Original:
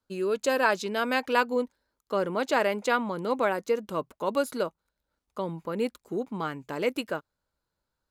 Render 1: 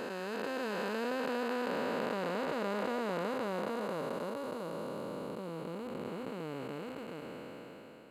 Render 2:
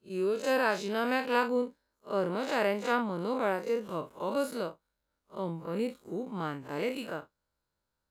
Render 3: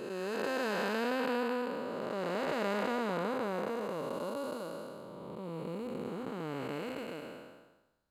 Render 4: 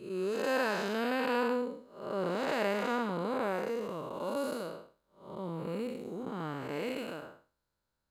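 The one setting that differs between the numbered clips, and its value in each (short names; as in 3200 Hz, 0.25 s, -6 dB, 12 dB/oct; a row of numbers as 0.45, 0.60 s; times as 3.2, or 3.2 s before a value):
time blur, width: 1720, 90, 684, 260 ms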